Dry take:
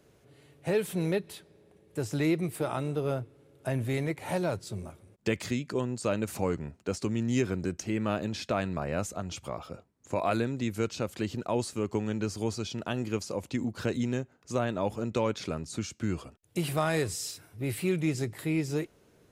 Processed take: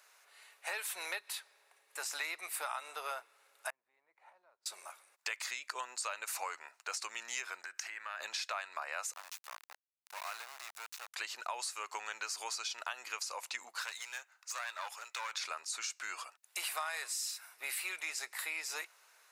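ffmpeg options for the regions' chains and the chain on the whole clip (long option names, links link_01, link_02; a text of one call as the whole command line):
ffmpeg -i in.wav -filter_complex "[0:a]asettb=1/sr,asplit=3[link_01][link_02][link_03];[link_01]atrim=end=3.704[link_04];[link_02]atrim=start=3.7:end=4.66,asetpts=PTS-STARTPTS,afade=type=in:duration=0.004:curve=qsin,afade=type=out:start_time=0.956:duration=0.004:curve=qsin,bandpass=frequency=100:width_type=q:width=1.2,acompressor=threshold=-47dB:ratio=12:attack=3.2:release=140:knee=1:detection=peak[link_05];[link_03]atrim=start=4.656[link_06];[link_04][link_05]acrossfade=duration=0.004:curve1=hsin:curve2=qsin[link_07];[link_07][link_06]acrossfade=duration=0.004:curve1=qsin:curve2=hsin,asettb=1/sr,asplit=3[link_08][link_09][link_10];[link_08]atrim=end=7.614[link_11];[link_09]atrim=start=7.61:end=8.2,asetpts=PTS-STARTPTS,afade=type=in:duration=0.004:curve=qsin,afade=type=out:start_time=0.586:duration=0.004:curve=qsin,equalizer=frequency=1700:width_type=o:width=0.57:gain=10.5,acompressor=threshold=-38dB:ratio=6:attack=3.2:release=140:knee=1:detection=peak[link_12];[link_10]atrim=start=8.196[link_13];[link_11][link_12]acrossfade=duration=0.004:curve1=hsin:curve2=qsin[link_14];[link_14][link_13]acrossfade=duration=0.004:curve1=qsin:curve2=hsin,asettb=1/sr,asplit=3[link_15][link_16][link_17];[link_15]atrim=end=9.134[link_18];[link_16]atrim=start=9.13:end=11.14,asetpts=PTS-STARTPTS,afade=type=in:duration=0.004:curve=qsin,afade=type=out:start_time=2.006:duration=0.004:curve=qsin,acompressor=threshold=-50dB:ratio=2:attack=3.2:release=140:knee=1:detection=peak,aeval=exprs='val(0)*gte(abs(val(0)),0.0075)':channel_layout=same[link_19];[link_17]atrim=start=11.136[link_20];[link_18][link_19]acrossfade=duration=0.004:curve1=hsin:curve2=qsin[link_21];[link_21][link_20]acrossfade=duration=0.004:curve1=qsin:curve2=hsin,asettb=1/sr,asplit=3[link_22][link_23][link_24];[link_22]atrim=end=13.824[link_25];[link_23]atrim=start=13.82:end=15.33,asetpts=PTS-STARTPTS,afade=type=in:duration=0.004:curve=qsin,afade=type=out:start_time=1.506:duration=0.004:curve=qsin,highpass=frequency=1500:poles=1,aeval=exprs='clip(val(0),-1,0.00668)':channel_layout=same[link_26];[link_24]atrim=start=15.326[link_27];[link_25][link_26]acrossfade=duration=0.004:curve1=hsin:curve2=qsin[link_28];[link_28][link_27]acrossfade=duration=0.004:curve1=qsin:curve2=hsin,highpass=frequency=940:width=0.5412,highpass=frequency=940:width=1.3066,equalizer=frequency=3200:width=7.9:gain=-7,acompressor=threshold=-42dB:ratio=6,volume=6.5dB" out.wav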